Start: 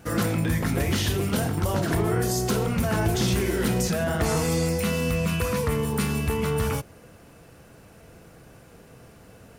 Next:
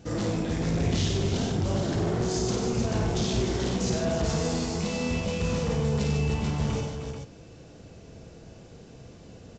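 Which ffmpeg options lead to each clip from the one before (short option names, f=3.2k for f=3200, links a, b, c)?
-af "firequalizer=gain_entry='entry(360,0);entry(1300,-10);entry(3600,0)':delay=0.05:min_phase=1,aresample=16000,asoftclip=type=tanh:threshold=-25.5dB,aresample=44100,aecho=1:1:53|94|150|307|434:0.562|0.473|0.398|0.398|0.422"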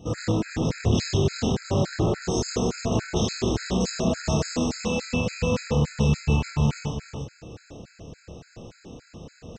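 -filter_complex "[0:a]areverse,acompressor=mode=upward:threshold=-40dB:ratio=2.5,areverse,asplit=2[a][b];[b]adelay=28,volume=-4dB[c];[a][c]amix=inputs=2:normalize=0,afftfilt=real='re*gt(sin(2*PI*3.5*pts/sr)*(1-2*mod(floor(b*sr/1024/1300),2)),0)':imag='im*gt(sin(2*PI*3.5*pts/sr)*(1-2*mod(floor(b*sr/1024/1300),2)),0)':win_size=1024:overlap=0.75,volume=4dB"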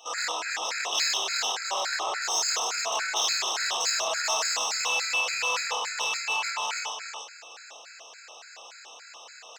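-filter_complex "[0:a]highpass=f=870:w=0.5412,highpass=f=870:w=1.3066,asplit=2[a][b];[b]asoftclip=type=tanh:threshold=-35.5dB,volume=-3.5dB[c];[a][c]amix=inputs=2:normalize=0,volume=4.5dB"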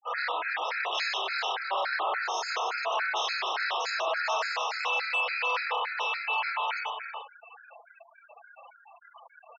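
-af "highpass=340,lowpass=2.6k,aeval=exprs='0.126*sin(PI/2*1.41*val(0)/0.126)':c=same,afftfilt=real='re*gte(hypot(re,im),0.0282)':imag='im*gte(hypot(re,im),0.0282)':win_size=1024:overlap=0.75,volume=-4dB"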